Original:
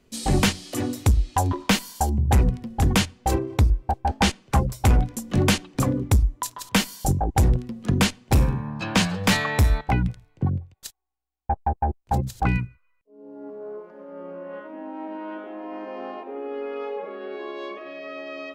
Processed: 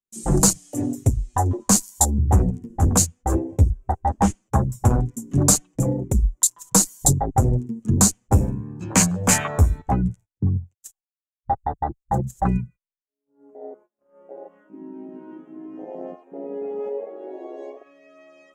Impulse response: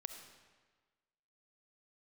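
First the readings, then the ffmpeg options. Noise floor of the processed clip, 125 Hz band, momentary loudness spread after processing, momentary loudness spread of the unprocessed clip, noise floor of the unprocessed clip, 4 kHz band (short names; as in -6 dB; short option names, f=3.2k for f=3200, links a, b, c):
under -85 dBFS, +1.5 dB, 19 LU, 16 LU, -64 dBFS, -4.5 dB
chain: -af "highshelf=f=5.5k:t=q:w=3:g=9,agate=range=-28dB:threshold=-39dB:ratio=16:detection=peak,afwtdn=0.0631,flanger=delay=5.1:depth=7.3:regen=6:speed=0.16:shape=triangular,volume=5dB"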